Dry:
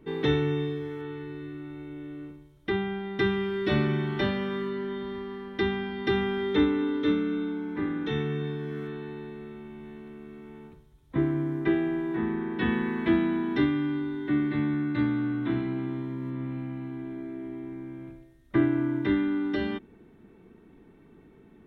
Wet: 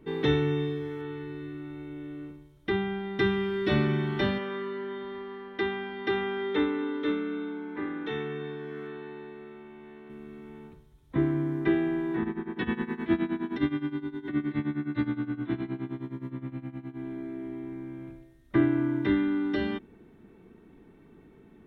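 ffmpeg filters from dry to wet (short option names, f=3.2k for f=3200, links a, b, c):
-filter_complex "[0:a]asettb=1/sr,asplit=3[a][b][c];[a]atrim=end=4.384[d];[b]atrim=start=4.38:end=10.1,asetpts=PTS-STARTPTS,afade=t=in:d=0.004:c=qsin,afade=t=out:st=5.716:d=0.004:c=qsin,bass=f=250:g=-12,treble=f=4k:g=-9[e];[c]atrim=start=10.096[f];[d][e]acrossfade=d=0.004:c1=hsin:c2=qsin[g];[g][f]acrossfade=d=0.004:c1=qsin:c2=hsin,asplit=3[h][i][j];[h]afade=t=out:st=12.23:d=0.02[k];[i]tremolo=f=9.6:d=0.85,afade=t=in:st=12.23:d=0.02,afade=t=out:st=16.98:d=0.02[l];[j]afade=t=in:st=16.98:d=0.02[m];[k][l][m]amix=inputs=3:normalize=0"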